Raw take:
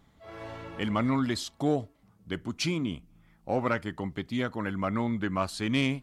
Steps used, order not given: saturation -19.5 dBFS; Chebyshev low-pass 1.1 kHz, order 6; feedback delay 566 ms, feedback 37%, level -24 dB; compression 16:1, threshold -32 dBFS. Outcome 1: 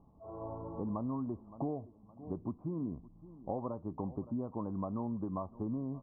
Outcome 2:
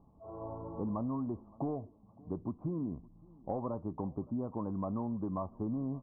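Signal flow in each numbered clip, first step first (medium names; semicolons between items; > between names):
feedback delay > compression > saturation > Chebyshev low-pass; saturation > Chebyshev low-pass > compression > feedback delay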